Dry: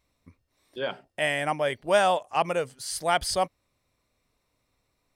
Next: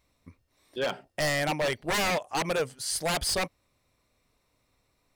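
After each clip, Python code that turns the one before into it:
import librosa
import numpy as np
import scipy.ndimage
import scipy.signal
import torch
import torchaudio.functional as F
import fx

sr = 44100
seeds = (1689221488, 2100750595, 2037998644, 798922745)

y = 10.0 ** (-24.0 / 20.0) * (np.abs((x / 10.0 ** (-24.0 / 20.0) + 3.0) % 4.0 - 2.0) - 1.0)
y = y * librosa.db_to_amplitude(2.5)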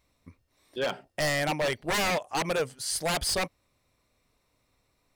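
y = x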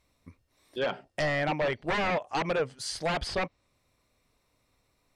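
y = fx.env_lowpass_down(x, sr, base_hz=2400.0, full_db=-23.5)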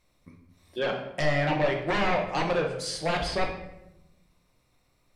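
y = fx.room_shoebox(x, sr, seeds[0], volume_m3=280.0, walls='mixed', distance_m=0.93)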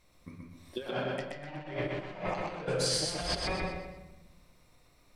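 y = fx.over_compress(x, sr, threshold_db=-33.0, ratio=-0.5)
y = fx.echo_feedback(y, sr, ms=125, feedback_pct=36, wet_db=-3.0)
y = y * librosa.db_to_amplitude(-3.0)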